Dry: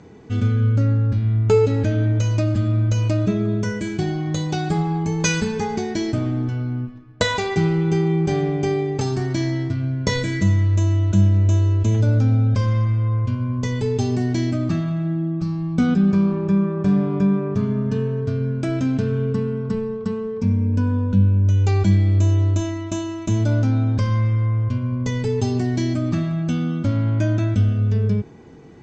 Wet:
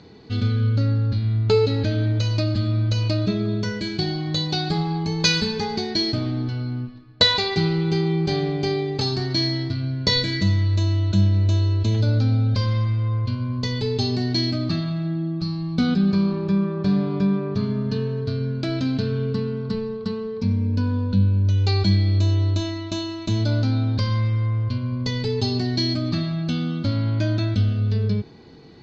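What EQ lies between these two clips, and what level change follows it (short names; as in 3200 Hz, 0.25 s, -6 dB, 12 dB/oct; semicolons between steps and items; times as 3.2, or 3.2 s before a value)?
synth low-pass 4300 Hz, resonance Q 8.9; -2.5 dB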